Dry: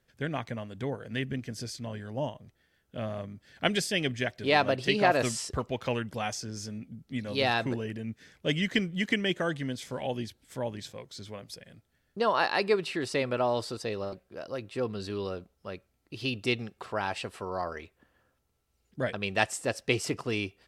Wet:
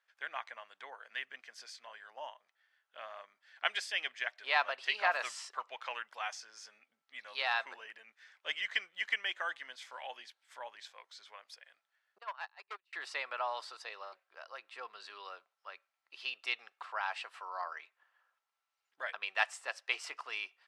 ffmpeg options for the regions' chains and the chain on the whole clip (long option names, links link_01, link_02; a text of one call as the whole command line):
ffmpeg -i in.wav -filter_complex "[0:a]asettb=1/sr,asplit=3[link_01][link_02][link_03];[link_01]atrim=end=12.184[link_04];[link_02]atrim=start=12.18:end=12.93,asetpts=PTS-STARTPTS,afade=type=in:duration=0.004:curve=qsin,afade=type=out:start_time=0.746:duration=0.004:curve=qsin,agate=range=-35dB:threshold=-24dB:ratio=16:release=100:detection=peak,highpass=frequency=130:width=0.5412,highpass=frequency=130:width=1.3066,aeval=exprs='(tanh(25.1*val(0)+0.4)-tanh(0.4))/25.1':channel_layout=same[link_05];[link_03]atrim=start=12.926[link_06];[link_04][link_05]acrossfade=duration=0.004:curve1=hsin:curve2=qsin[link_07];[link_07][link_06]acrossfade=duration=0.004:curve1=qsin:curve2=hsin,highpass=frequency=960:width=0.5412,highpass=frequency=960:width=1.3066,aemphasis=mode=reproduction:type=riaa" out.wav